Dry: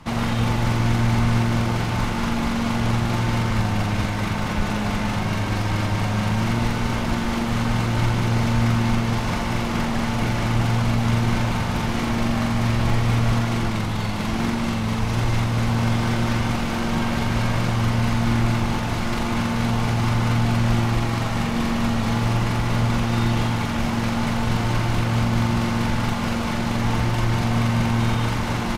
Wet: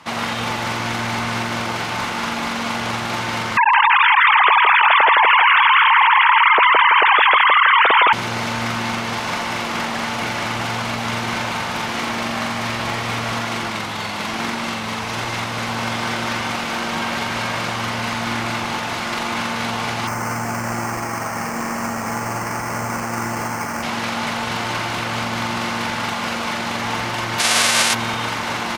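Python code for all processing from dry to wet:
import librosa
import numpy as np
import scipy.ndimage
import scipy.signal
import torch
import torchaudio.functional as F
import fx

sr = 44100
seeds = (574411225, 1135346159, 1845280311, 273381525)

y = fx.chain(x, sr, fx.sine_speech(),
    fx.echo_feedback(ms=164, feedback_pct=23, wet_db=-3.5),
    fx.env_flatten(amount_pct=70), at=(3.57, 8.13))
y = fx.chain(y, sr, fx.lowpass(hz=2200.0, slope=24),
    fx.resample_bad(factor=6, down='filtered', up='hold'), at=(20.07, 23.83))
y = fx.envelope_flatten(y, sr, power=0.3, at=(27.38, 27.93), fade=0.02)
y = fx.steep_lowpass(y, sr, hz=11000.0, slope=36, at=(27.38, 27.93), fade=0.02)
y = fx.highpass(y, sr, hz=880.0, slope=6)
y = fx.high_shelf(y, sr, hz=8400.0, db=-6.0)
y = y * 10.0 ** (7.0 / 20.0)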